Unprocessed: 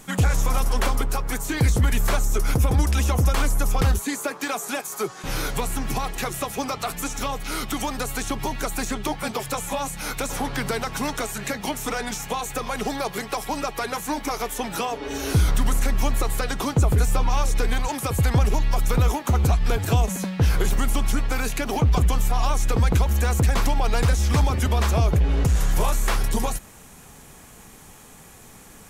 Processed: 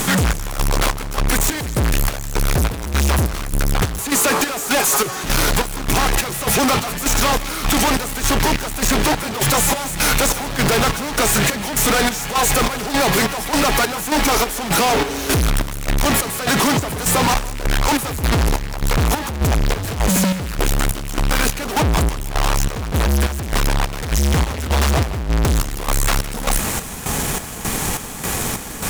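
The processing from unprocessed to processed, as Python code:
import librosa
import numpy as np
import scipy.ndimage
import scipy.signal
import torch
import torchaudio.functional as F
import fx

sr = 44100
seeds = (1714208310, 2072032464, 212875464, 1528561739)

y = fx.highpass(x, sr, hz=150.0, slope=12, at=(16.05, 17.34))
y = fx.fuzz(y, sr, gain_db=45.0, gate_db=-51.0)
y = fx.chopper(y, sr, hz=1.7, depth_pct=65, duty_pct=55)
y = fx.echo_feedback(y, sr, ms=161, feedback_pct=51, wet_db=-18.5)
y = F.gain(torch.from_numpy(y), -1.5).numpy()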